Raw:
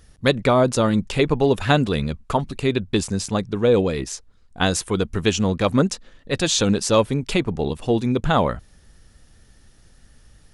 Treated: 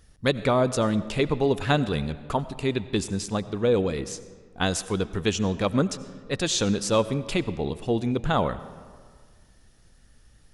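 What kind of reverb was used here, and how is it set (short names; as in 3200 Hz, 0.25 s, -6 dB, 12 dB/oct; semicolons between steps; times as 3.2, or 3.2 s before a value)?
digital reverb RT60 1.8 s, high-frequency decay 0.6×, pre-delay 50 ms, DRR 15 dB; gain -5 dB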